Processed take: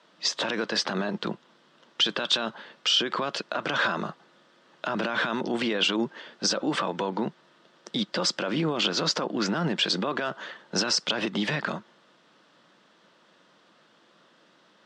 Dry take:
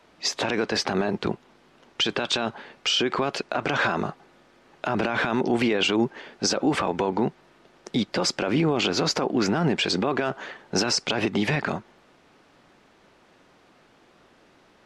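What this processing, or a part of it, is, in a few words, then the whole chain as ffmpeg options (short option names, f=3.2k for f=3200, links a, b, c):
television speaker: -af "highpass=f=170:w=0.5412,highpass=f=170:w=1.3066,equalizer=f=260:t=q:w=4:g=-7,equalizer=f=400:t=q:w=4:g=-8,equalizer=f=770:t=q:w=4:g=-8,equalizer=f=2.3k:t=q:w=4:g=-7,equalizer=f=3.4k:t=q:w=4:g=4,equalizer=f=6.7k:t=q:w=4:g=-3,lowpass=f=8.2k:w=0.5412,lowpass=f=8.2k:w=1.3066"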